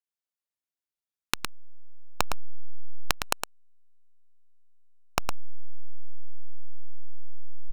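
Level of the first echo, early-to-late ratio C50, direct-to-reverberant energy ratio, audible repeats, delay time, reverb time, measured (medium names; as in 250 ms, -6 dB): -6.5 dB, no reverb, no reverb, 1, 111 ms, no reverb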